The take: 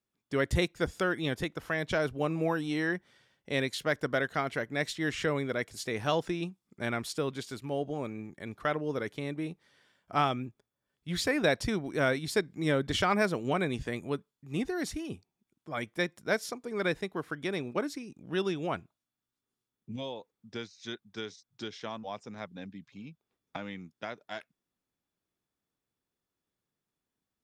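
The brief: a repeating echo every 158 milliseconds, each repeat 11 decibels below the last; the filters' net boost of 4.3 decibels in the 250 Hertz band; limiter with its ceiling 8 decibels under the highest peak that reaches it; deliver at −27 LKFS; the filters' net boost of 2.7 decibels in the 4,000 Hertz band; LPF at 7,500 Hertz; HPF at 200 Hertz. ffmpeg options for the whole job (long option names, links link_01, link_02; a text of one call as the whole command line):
ffmpeg -i in.wav -af "highpass=200,lowpass=7500,equalizer=frequency=250:width_type=o:gain=7.5,equalizer=frequency=4000:width_type=o:gain=3.5,alimiter=limit=-19dB:level=0:latency=1,aecho=1:1:158|316|474:0.282|0.0789|0.0221,volume=5.5dB" out.wav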